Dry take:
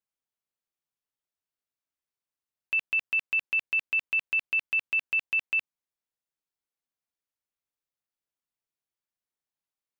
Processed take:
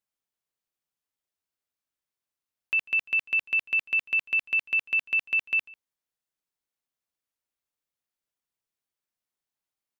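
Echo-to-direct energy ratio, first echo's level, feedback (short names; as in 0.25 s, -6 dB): -23.5 dB, -23.5 dB, no steady repeat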